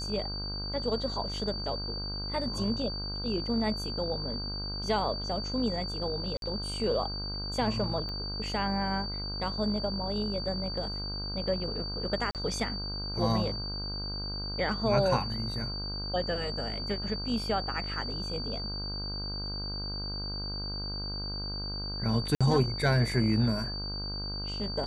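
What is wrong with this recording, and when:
buzz 50 Hz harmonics 32 -38 dBFS
whine 4.6 kHz -36 dBFS
6.37–6.42 s: dropout 52 ms
8.09 s: pop -27 dBFS
12.31–12.35 s: dropout 38 ms
22.35–22.41 s: dropout 56 ms

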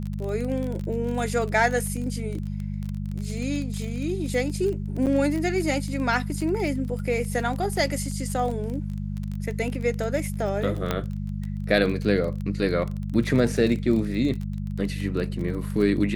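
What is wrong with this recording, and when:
crackle 27 per s -29 dBFS
hum 50 Hz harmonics 4 -30 dBFS
5.06–5.07 s: dropout 7.9 ms
10.91 s: pop -10 dBFS

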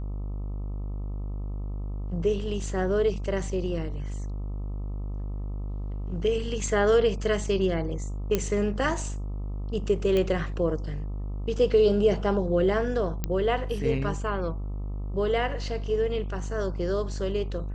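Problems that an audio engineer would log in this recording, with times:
buzz 50 Hz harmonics 26 -32 dBFS
8.35 s: pop -10 dBFS
10.17 s: pop -15 dBFS
13.24 s: pop -13 dBFS

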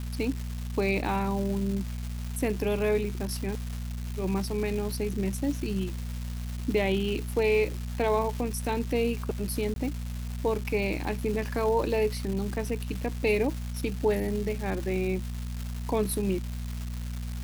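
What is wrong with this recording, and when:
crackle 600 per s -34 dBFS
hum 60 Hz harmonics 4 -34 dBFS
9.74–9.76 s: dropout 22 ms

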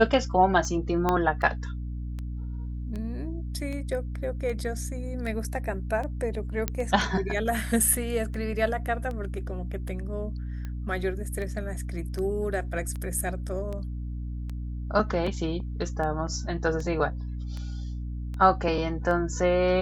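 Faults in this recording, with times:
hum 60 Hz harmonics 5 -33 dBFS
tick 78 rpm -24 dBFS
1.09 s: pop -11 dBFS
6.68 s: pop -11 dBFS

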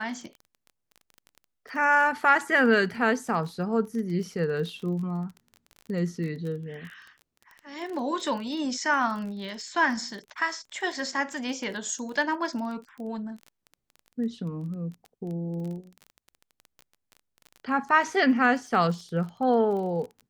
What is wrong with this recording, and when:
crackle 26 per s -35 dBFS

